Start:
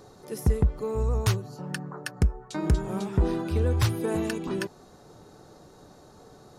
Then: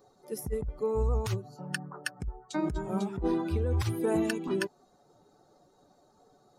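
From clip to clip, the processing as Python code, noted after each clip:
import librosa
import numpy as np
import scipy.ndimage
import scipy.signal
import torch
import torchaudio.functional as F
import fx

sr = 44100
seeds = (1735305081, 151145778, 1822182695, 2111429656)

y = fx.bin_expand(x, sr, power=1.5)
y = fx.over_compress(y, sr, threshold_db=-28.0, ratio=-1.0)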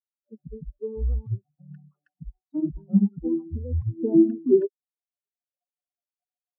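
y = fx.bin_expand(x, sr, power=3.0)
y = fx.peak_eq(y, sr, hz=390.0, db=8.5, octaves=2.1)
y = fx.filter_sweep_lowpass(y, sr, from_hz=210.0, to_hz=570.0, start_s=3.71, end_s=5.57, q=2.6)
y = y * librosa.db_to_amplitude(4.0)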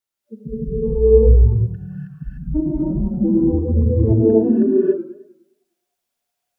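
y = fx.over_compress(x, sr, threshold_db=-26.0, ratio=-1.0)
y = fx.rev_gated(y, sr, seeds[0], gate_ms=320, shape='rising', drr_db=-7.5)
y = fx.echo_warbled(y, sr, ms=103, feedback_pct=45, rate_hz=2.8, cents=168, wet_db=-13.5)
y = y * librosa.db_to_amplitude(4.5)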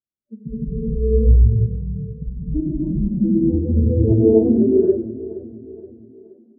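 y = fx.filter_sweep_lowpass(x, sr, from_hz=250.0, to_hz=580.0, start_s=3.26, end_s=4.36, q=1.1)
y = fx.echo_feedback(y, sr, ms=473, feedback_pct=46, wet_db=-16.0)
y = y * librosa.db_to_amplitude(-1.0)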